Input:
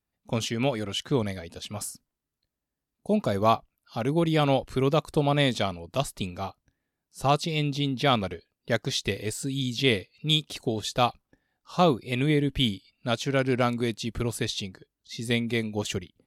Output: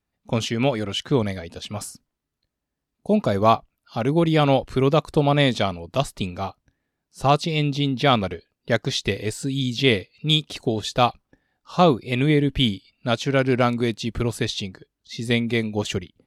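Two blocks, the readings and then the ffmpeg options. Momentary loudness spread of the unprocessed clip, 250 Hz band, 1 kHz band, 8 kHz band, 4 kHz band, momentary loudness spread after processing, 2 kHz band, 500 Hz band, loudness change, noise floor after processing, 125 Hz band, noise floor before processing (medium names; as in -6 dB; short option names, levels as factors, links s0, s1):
12 LU, +5.0 dB, +5.0 dB, +1.0 dB, +3.5 dB, 12 LU, +4.5 dB, +5.0 dB, +5.0 dB, -82 dBFS, +5.0 dB, under -85 dBFS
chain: -af "highshelf=f=8300:g=-10,volume=1.78"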